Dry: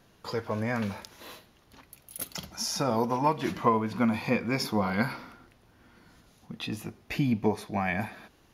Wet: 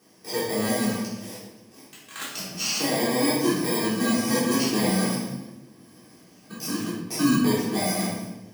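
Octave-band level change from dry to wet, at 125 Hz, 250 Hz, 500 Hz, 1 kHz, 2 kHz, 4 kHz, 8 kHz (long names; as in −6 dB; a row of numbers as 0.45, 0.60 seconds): +1.5, +6.0, +4.0, −1.5, +3.5, +9.0, +11.5 decibels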